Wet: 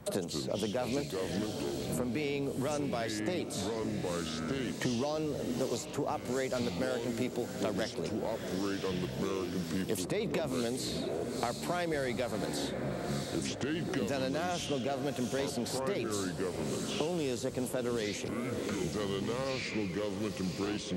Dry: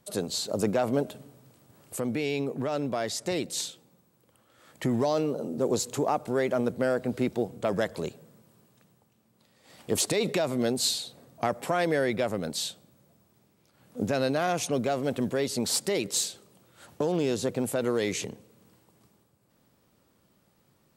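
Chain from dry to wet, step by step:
feedback delay with all-pass diffusion 659 ms, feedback 54%, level −13 dB
delay with pitch and tempo change per echo 130 ms, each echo −5 semitones, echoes 3, each echo −6 dB
multiband upward and downward compressor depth 100%
level −7 dB

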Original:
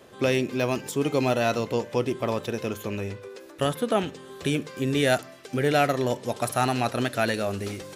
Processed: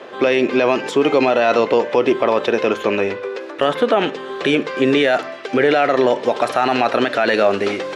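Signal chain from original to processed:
band-pass filter 360–3,000 Hz
boost into a limiter +21.5 dB
level −4.5 dB

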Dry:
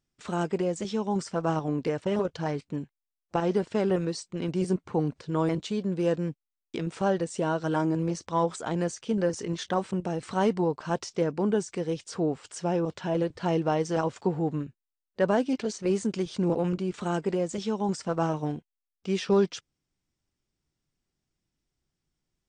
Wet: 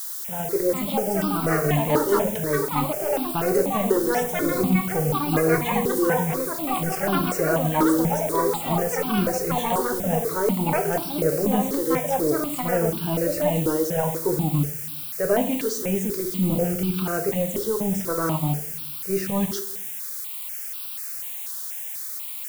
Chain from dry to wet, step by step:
automatic gain control gain up to 6 dB
transient designer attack −5 dB, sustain −1 dB
in parallel at −1 dB: output level in coarse steps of 13 dB
on the sum: delay with pitch and tempo change per echo 519 ms, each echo +7 semitones, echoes 2
rotating-speaker cabinet horn 5 Hz, later 0.75 Hz, at 0:12.44
rectangular room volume 82 cubic metres, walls mixed, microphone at 0.41 metres
background noise blue −32 dBFS
step-sequenced phaser 4.1 Hz 670–1,900 Hz

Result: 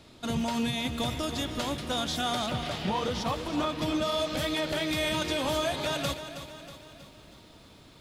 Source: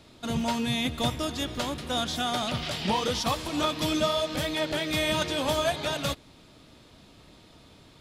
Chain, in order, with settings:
0:02.46–0:04.02: high-shelf EQ 3,200 Hz −10 dB
brickwall limiter −20.5 dBFS, peak gain reduction 6.5 dB
feedback echo at a low word length 320 ms, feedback 55%, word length 10 bits, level −11 dB

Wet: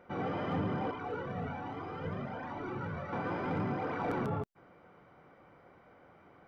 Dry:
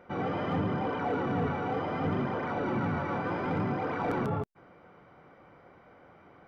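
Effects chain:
0:00.91–0:03.13: flanger whose copies keep moving one way rising 1.2 Hz
level −3.5 dB

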